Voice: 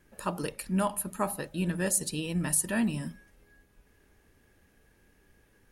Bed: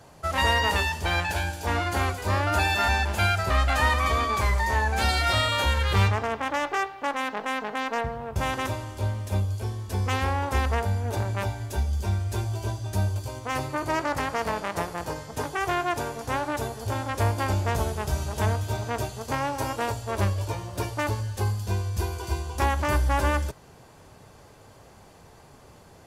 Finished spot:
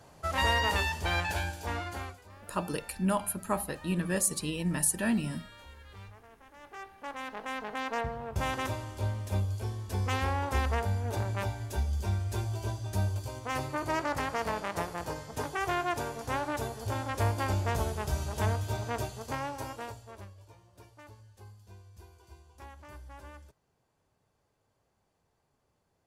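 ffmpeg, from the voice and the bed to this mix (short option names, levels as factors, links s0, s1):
-filter_complex "[0:a]adelay=2300,volume=0.944[s0];[1:a]volume=8.91,afade=t=out:st=1.35:d=0.94:silence=0.0668344,afade=t=in:st=6.56:d=1.47:silence=0.0668344,afade=t=out:st=18.97:d=1.3:silence=0.0944061[s1];[s0][s1]amix=inputs=2:normalize=0"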